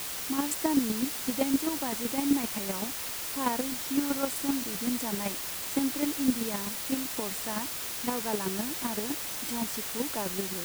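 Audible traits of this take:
chopped level 7.8 Hz, depth 60%, duty 15%
a quantiser's noise floor 6 bits, dither triangular

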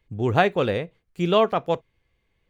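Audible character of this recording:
background noise floor −73 dBFS
spectral slope −4.5 dB per octave

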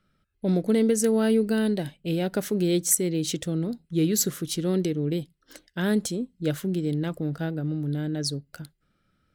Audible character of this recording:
background noise floor −72 dBFS
spectral slope −5.0 dB per octave

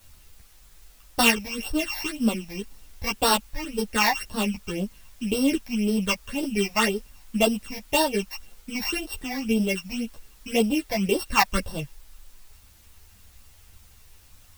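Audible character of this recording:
a buzz of ramps at a fixed pitch in blocks of 16 samples
phaser sweep stages 8, 1.9 Hz, lowest notch 380–2,300 Hz
a quantiser's noise floor 10 bits, dither triangular
a shimmering, thickened sound

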